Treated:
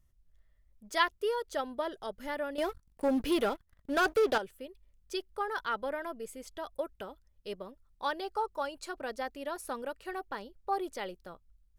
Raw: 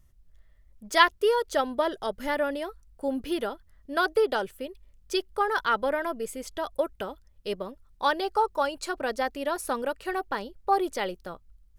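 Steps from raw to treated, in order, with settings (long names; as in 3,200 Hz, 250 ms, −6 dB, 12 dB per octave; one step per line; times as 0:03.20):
0:02.58–0:04.38: leveller curve on the samples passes 3
level −8.5 dB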